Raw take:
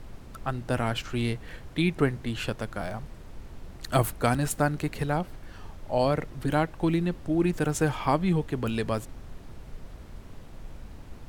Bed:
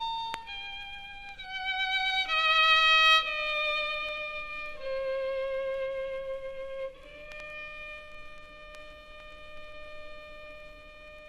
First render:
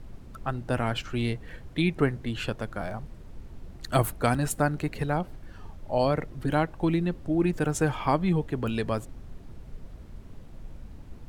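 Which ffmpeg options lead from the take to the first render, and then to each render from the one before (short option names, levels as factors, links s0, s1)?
-af "afftdn=nr=6:nf=-46"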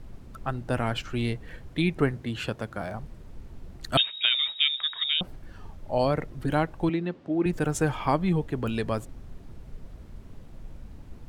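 -filter_complex "[0:a]asettb=1/sr,asplit=3[s0][s1][s2];[s0]atrim=end=2.134[s3];[s1]atrim=start=2.13:end=2.95,asetpts=PTS-STARTPTS,afade=t=in:d=0.004:c=qsin,afade=t=out:st=0.816:d=0.004:c=qsin,highpass=65[s4];[s2]atrim=start=2.946[s5];[s3][s4]acrossfade=d=0.004:c1=hsin:c2=qsin[s6];[s6][s5]acrossfade=d=0.004:c1=qsin:c2=hsin,asettb=1/sr,asplit=3[s7][s8][s9];[s7]atrim=end=3.974[s10];[s8]atrim=start=3.97:end=5.21,asetpts=PTS-STARTPTS,afade=t=in:d=0.004:c=qsin,afade=t=out:st=1.236:d=0.004:c=qsin,lowpass=f=3200:t=q:w=0.5098,lowpass=f=3200:t=q:w=0.6013,lowpass=f=3200:t=q:w=0.9,lowpass=f=3200:t=q:w=2.563,afreqshift=-3800[s11];[s9]atrim=start=5.206[s12];[s10][s11]acrossfade=d=0.004:c1=hsin:c2=qsin[s13];[s13][s12]acrossfade=d=0.004:c1=qsin:c2=hsin,asettb=1/sr,asplit=3[s14][s15][s16];[s14]atrim=end=6.894[s17];[s15]atrim=start=6.89:end=7.46,asetpts=PTS-STARTPTS,afade=t=in:d=0.004:c=qsin,afade=t=out:st=0.566:d=0.004:c=qsin,highpass=210,lowpass=4200[s18];[s16]atrim=start=7.456[s19];[s17][s18]acrossfade=d=0.004:c1=hsin:c2=qsin[s20];[s20][s19]acrossfade=d=0.004:c1=qsin:c2=hsin"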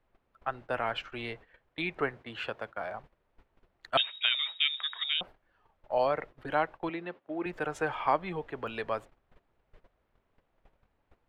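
-filter_complex "[0:a]agate=range=0.158:threshold=0.0158:ratio=16:detection=peak,acrossover=split=460 3400:gain=0.126 1 0.112[s0][s1][s2];[s0][s1][s2]amix=inputs=3:normalize=0"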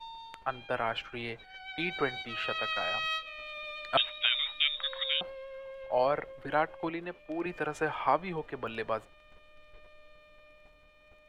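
-filter_complex "[1:a]volume=0.251[s0];[0:a][s0]amix=inputs=2:normalize=0"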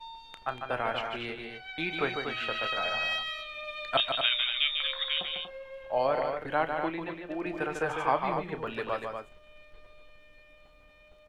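-filter_complex "[0:a]asplit=2[s0][s1];[s1]adelay=31,volume=0.224[s2];[s0][s2]amix=inputs=2:normalize=0,aecho=1:1:148.7|239.1:0.501|0.447"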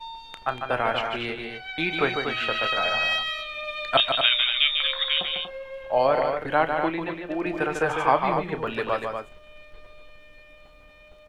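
-af "volume=2.11"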